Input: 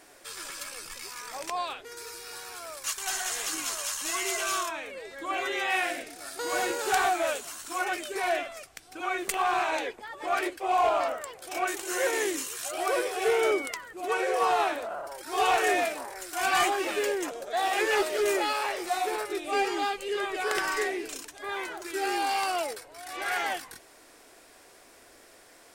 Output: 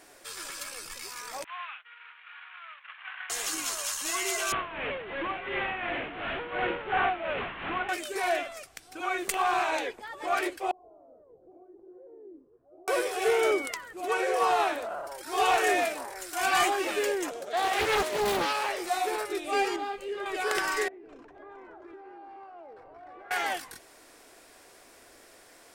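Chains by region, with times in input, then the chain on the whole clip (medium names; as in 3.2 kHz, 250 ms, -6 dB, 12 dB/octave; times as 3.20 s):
1.44–3.30 s: CVSD coder 16 kbps + high-pass 1.2 kHz 24 dB/octave + expander -49 dBFS
4.52–7.89 s: one-bit delta coder 16 kbps, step -25.5 dBFS + tremolo 2.8 Hz, depth 66%
10.71–12.88 s: compression, threshold -39 dBFS + four-pole ladder low-pass 560 Hz, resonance 25%
17.36–18.69 s: high-pass 110 Hz + loudspeaker Doppler distortion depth 0.55 ms
19.76–20.26 s: treble shelf 2.5 kHz -11 dB + compression 1.5:1, threshold -38 dBFS + doubling 30 ms -9 dB
20.88–23.31 s: low-pass 1 kHz + compression 16:1, threshold -44 dBFS + delay 425 ms -9.5 dB
whole clip: none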